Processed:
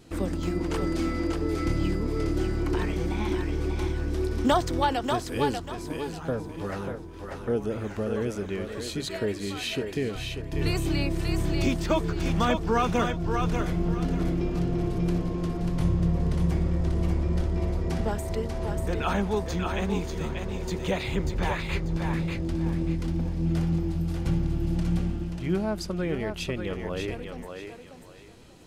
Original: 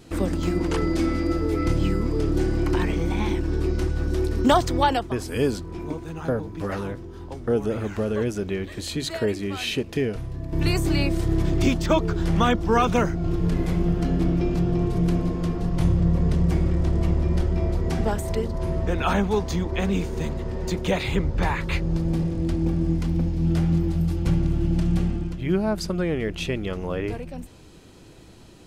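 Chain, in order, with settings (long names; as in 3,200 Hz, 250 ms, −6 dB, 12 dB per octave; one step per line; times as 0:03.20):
feedback echo with a high-pass in the loop 590 ms, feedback 29%, level −4 dB
level −4.5 dB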